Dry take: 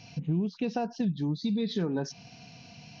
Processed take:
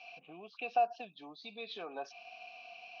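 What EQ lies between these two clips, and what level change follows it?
vowel filter a; high-pass 320 Hz 12 dB/octave; peaking EQ 2.8 kHz +12.5 dB 2.3 oct; +3.5 dB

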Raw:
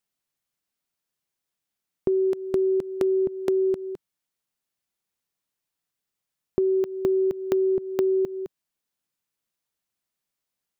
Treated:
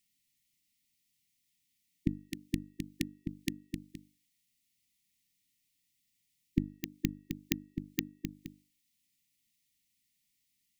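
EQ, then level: brick-wall FIR band-stop 320–1800 Hz; peaking EQ 1.7 kHz -3 dB 0.24 oct; hum notches 50/100/150/200/250/300 Hz; +7.0 dB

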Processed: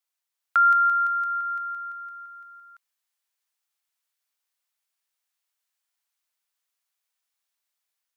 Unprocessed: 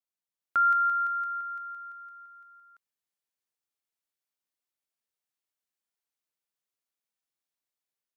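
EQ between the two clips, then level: high-pass 820 Hz; dynamic bell 1.9 kHz, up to -4 dB, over -36 dBFS, Q 1.2; +8.0 dB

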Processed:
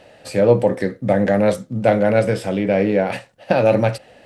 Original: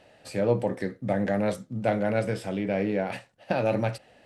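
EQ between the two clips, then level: peaking EQ 520 Hz +4 dB 0.31 oct; +8.5 dB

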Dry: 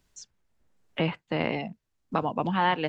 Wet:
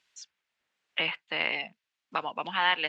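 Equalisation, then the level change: band-pass filter 2.7 kHz, Q 1.2; +7.0 dB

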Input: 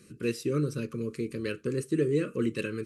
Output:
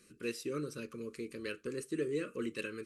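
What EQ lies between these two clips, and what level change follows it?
peaking EQ 120 Hz -12.5 dB 1.5 oct; peaking EQ 380 Hz -2.5 dB 1.7 oct; -4.0 dB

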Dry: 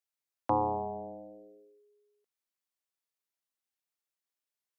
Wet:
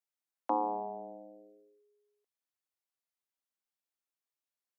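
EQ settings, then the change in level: rippled Chebyshev high-pass 200 Hz, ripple 3 dB; -2.0 dB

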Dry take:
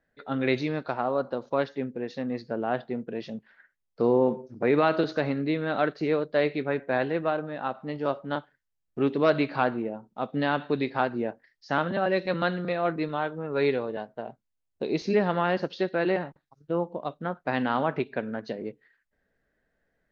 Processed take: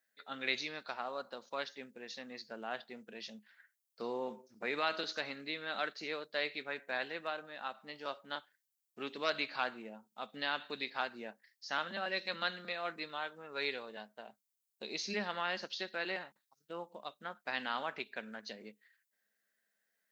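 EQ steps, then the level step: differentiator; peaking EQ 210 Hz +12 dB 0.22 oct; +6.5 dB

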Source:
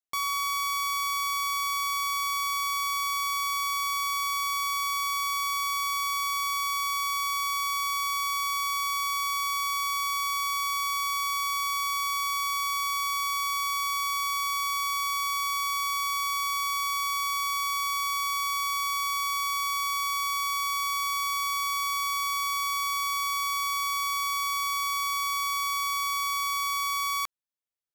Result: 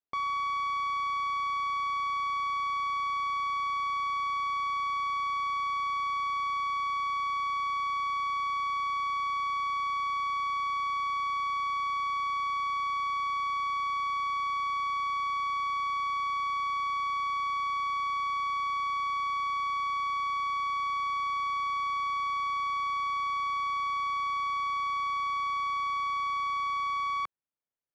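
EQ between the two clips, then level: tape spacing loss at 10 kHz 42 dB; bass shelf 83 Hz -7 dB; +4.5 dB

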